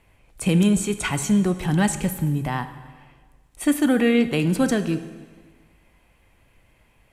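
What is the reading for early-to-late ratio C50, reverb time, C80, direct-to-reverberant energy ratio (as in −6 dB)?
12.0 dB, 1.5 s, 13.5 dB, 10.0 dB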